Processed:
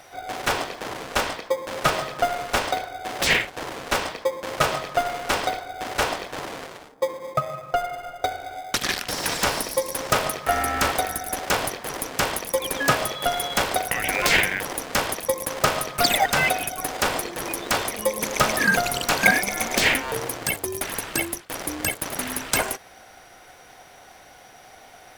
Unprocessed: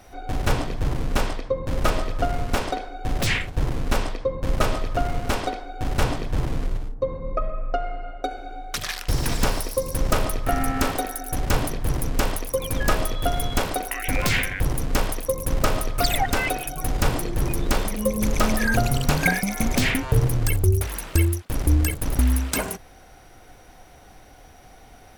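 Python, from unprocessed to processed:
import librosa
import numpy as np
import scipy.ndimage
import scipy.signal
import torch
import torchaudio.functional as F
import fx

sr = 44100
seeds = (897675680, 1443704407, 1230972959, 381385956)

p1 = scipy.signal.sosfilt(scipy.signal.butter(2, 680.0, 'highpass', fs=sr, output='sos'), x)
p2 = fx.high_shelf(p1, sr, hz=11000.0, db=-4.5)
p3 = fx.sample_hold(p2, sr, seeds[0], rate_hz=1400.0, jitter_pct=0)
p4 = p2 + (p3 * 10.0 ** (-7.5 / 20.0))
y = p4 * 10.0 ** (5.0 / 20.0)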